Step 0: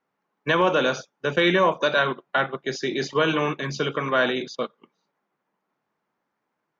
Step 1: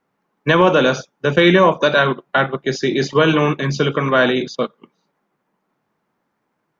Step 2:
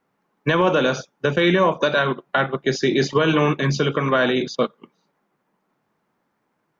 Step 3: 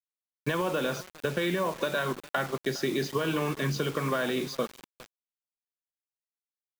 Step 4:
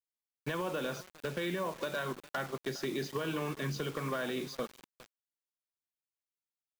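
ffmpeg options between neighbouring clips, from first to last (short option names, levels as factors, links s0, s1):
-af "lowshelf=f=290:g=7.5,volume=1.88"
-af "alimiter=limit=0.398:level=0:latency=1:release=239"
-af "acompressor=threshold=0.126:ratio=8,aecho=1:1:409|818|1227:0.0944|0.0397|0.0167,acrusher=bits=5:mix=0:aa=0.000001,volume=0.473"
-af "aeval=exprs='0.1*(abs(mod(val(0)/0.1+3,4)-2)-1)':c=same,volume=0.473"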